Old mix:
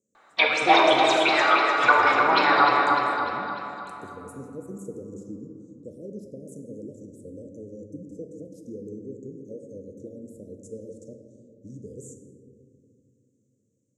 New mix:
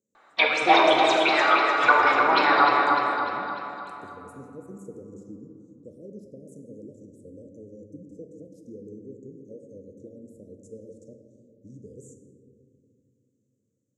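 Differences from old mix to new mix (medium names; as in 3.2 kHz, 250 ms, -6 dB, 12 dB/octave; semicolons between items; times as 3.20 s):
speech -4.0 dB; master: add treble shelf 7 kHz -5 dB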